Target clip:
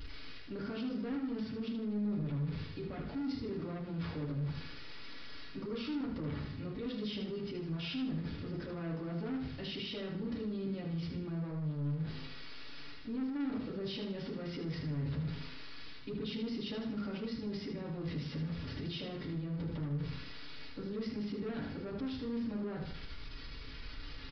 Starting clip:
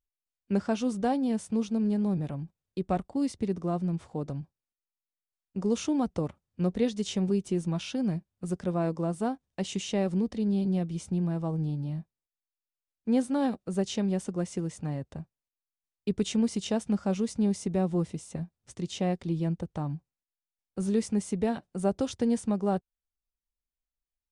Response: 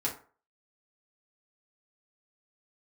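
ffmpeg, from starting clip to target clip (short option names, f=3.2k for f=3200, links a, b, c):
-filter_complex "[0:a]aeval=exprs='val(0)+0.5*0.00841*sgn(val(0))':c=same,areverse,acompressor=threshold=-35dB:ratio=5,areverse[a];[1:a]atrim=start_sample=2205,afade=t=out:st=0.16:d=0.01,atrim=end_sample=7497[b];[a][b]afir=irnorm=-1:irlink=0,aresample=11025,asoftclip=type=tanh:threshold=-31dB,aresample=44100,alimiter=level_in=14dB:limit=-24dB:level=0:latency=1:release=31,volume=-14dB,equalizer=f=770:w=1.7:g=-12,aecho=1:1:77|154|231|308|385:0.447|0.179|0.0715|0.0286|0.0114,volume=4.5dB"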